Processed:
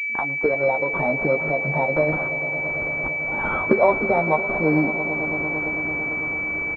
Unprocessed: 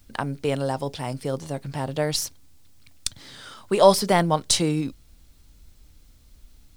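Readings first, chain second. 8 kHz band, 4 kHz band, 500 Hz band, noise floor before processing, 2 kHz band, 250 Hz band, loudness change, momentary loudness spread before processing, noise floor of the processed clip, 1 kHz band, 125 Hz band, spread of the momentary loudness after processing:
below −30 dB, below −25 dB, +2.5 dB, −54 dBFS, +16.5 dB, +3.0 dB, +2.5 dB, 16 LU, −26 dBFS, +1.5 dB, −0.5 dB, 5 LU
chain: spectral magnitudes quantised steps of 15 dB
camcorder AGC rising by 54 dB per second
high-pass filter 270 Hz 12 dB per octave
de-essing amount 45%
noise reduction from a noise print of the clip's start 7 dB
parametric band 360 Hz −2.5 dB
double-tracking delay 13 ms −5.5 dB
on a send: echo that builds up and dies away 112 ms, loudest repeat 5, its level −17.5 dB
on the sum: switching amplifier with a slow clock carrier 2,300 Hz

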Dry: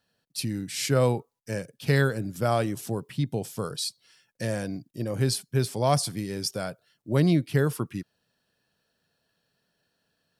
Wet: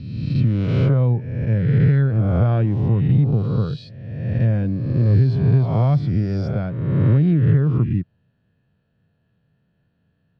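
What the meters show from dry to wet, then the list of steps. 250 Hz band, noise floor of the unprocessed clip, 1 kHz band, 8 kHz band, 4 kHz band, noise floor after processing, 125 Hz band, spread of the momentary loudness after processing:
+8.0 dB, −76 dBFS, −2.0 dB, below −25 dB, can't be measured, −67 dBFS, +13.0 dB, 8 LU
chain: peak hold with a rise ahead of every peak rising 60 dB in 1.32 s
parametric band 110 Hz +11 dB 2.5 octaves
downward compressor 6 to 1, threshold −16 dBFS, peak gain reduction 8 dB
low-pass filter 3,100 Hz 24 dB per octave
low-shelf EQ 210 Hz +11.5 dB
level −3.5 dB

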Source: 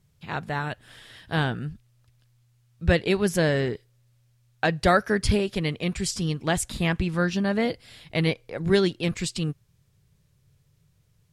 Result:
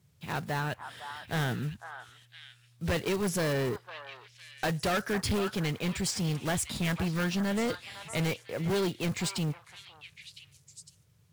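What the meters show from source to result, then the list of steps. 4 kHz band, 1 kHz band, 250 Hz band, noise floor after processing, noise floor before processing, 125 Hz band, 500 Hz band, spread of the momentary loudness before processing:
−4.0 dB, −6.0 dB, −5.5 dB, −63 dBFS, −65 dBFS, −5.0 dB, −7.0 dB, 12 LU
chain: one scale factor per block 5 bits
high-pass filter 69 Hz 24 dB per octave
soft clipping −25.5 dBFS, distortion −7 dB
echo through a band-pass that steps 505 ms, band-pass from 1,100 Hz, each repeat 1.4 octaves, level −5.5 dB

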